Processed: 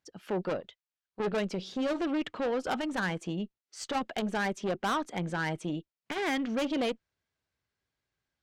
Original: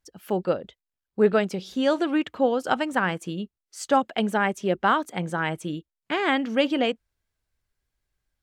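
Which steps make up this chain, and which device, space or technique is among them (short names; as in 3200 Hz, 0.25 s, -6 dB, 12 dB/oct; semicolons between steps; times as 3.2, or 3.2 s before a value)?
valve radio (BPF 110–5900 Hz; tube stage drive 25 dB, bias 0.25; core saturation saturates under 220 Hz); 0.6–1.2 bell 210 Hz -14.5 dB 2.7 oct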